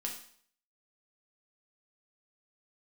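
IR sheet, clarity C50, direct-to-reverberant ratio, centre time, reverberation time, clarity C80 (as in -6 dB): 7.0 dB, -0.5 dB, 24 ms, 0.55 s, 10.5 dB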